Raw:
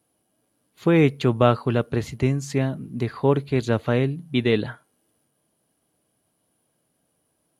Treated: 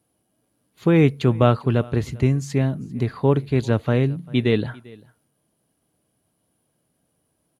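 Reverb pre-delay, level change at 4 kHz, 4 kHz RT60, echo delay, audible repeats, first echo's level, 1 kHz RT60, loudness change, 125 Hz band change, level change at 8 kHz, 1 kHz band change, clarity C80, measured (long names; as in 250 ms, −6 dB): no reverb audible, −1.0 dB, no reverb audible, 395 ms, 1, −23.5 dB, no reverb audible, +1.5 dB, +3.5 dB, can't be measured, −0.5 dB, no reverb audible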